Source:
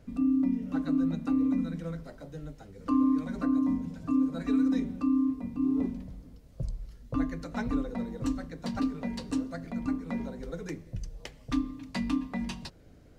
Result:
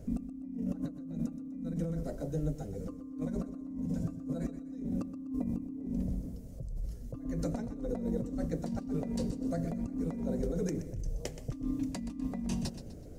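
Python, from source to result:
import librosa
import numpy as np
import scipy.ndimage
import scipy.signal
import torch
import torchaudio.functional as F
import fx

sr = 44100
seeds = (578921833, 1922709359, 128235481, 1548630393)

p1 = fx.band_shelf(x, sr, hz=2000.0, db=-12.0, octaves=2.7)
p2 = fx.over_compress(p1, sr, threshold_db=-39.0, ratio=-1.0)
p3 = p2 + fx.echo_feedback(p2, sr, ms=125, feedback_pct=39, wet_db=-12.5, dry=0)
y = p3 * 10.0 ** (1.5 / 20.0)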